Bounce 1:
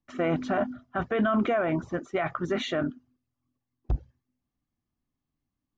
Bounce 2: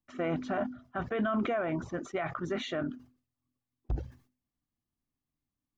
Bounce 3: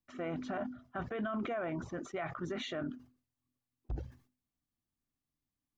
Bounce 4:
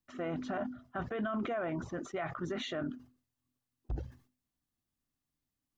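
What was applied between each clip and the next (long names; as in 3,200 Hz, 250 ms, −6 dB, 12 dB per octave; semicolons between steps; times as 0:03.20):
level that may fall only so fast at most 140 dB per second; level −5.5 dB
brickwall limiter −27 dBFS, peak gain reduction 5.5 dB; level −2.5 dB
notch filter 2,300 Hz, Q 18; level +1.5 dB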